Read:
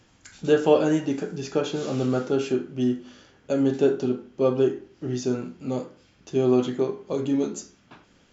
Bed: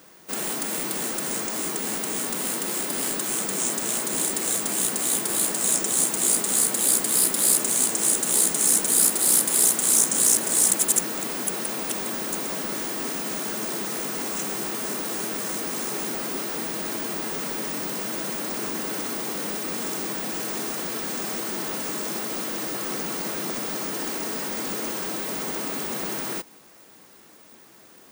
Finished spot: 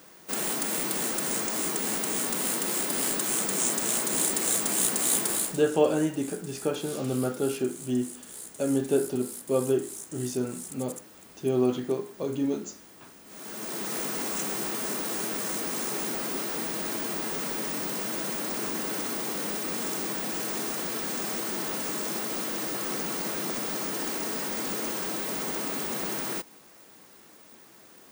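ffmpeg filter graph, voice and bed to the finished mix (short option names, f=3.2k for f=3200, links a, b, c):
-filter_complex "[0:a]adelay=5100,volume=-4dB[a];[1:a]volume=19dB,afade=t=out:st=5.26:d=0.36:silence=0.0891251,afade=t=in:st=13.26:d=0.71:silence=0.1[b];[a][b]amix=inputs=2:normalize=0"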